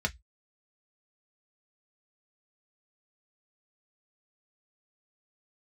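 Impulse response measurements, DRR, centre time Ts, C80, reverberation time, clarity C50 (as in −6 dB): 3.0 dB, 5 ms, 39.5 dB, 0.10 s, 26.5 dB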